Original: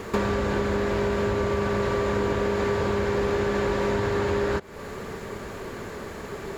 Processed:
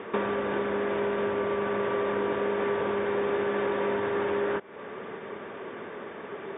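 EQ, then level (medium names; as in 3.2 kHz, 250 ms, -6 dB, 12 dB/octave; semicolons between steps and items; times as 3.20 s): high-pass 250 Hz 12 dB/octave; brick-wall FIR low-pass 3.7 kHz; distance through air 110 m; -1.5 dB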